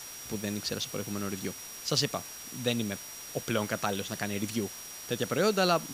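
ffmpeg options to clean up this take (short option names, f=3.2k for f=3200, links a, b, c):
-af "bandreject=f=5.7k:w=30,afwtdn=0.0063"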